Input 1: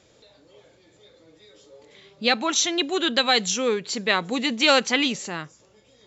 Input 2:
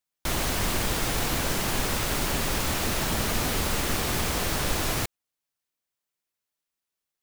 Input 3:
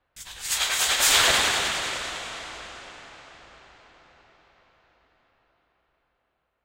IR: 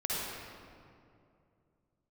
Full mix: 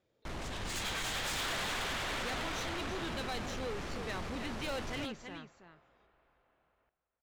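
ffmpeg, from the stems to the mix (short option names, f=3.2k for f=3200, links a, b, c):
-filter_complex "[0:a]dynaudnorm=f=190:g=9:m=11.5dB,volume=-18.5dB,asplit=2[a][b];[b]volume=-10.5dB[c];[1:a]volume=-10.5dB,asplit=2[d][e];[e]volume=-18dB[f];[2:a]acompressor=threshold=-30dB:ratio=2.5,adelay=250,volume=1.5dB,asplit=2[g][h];[h]volume=-13.5dB[i];[c][f][i]amix=inputs=3:normalize=0,aecho=0:1:326:1[j];[a][d][g][j]amix=inputs=4:normalize=0,highshelf=f=3.3k:g=-7,adynamicsmooth=sensitivity=7.5:basefreq=6k,asoftclip=type=tanh:threshold=-33dB"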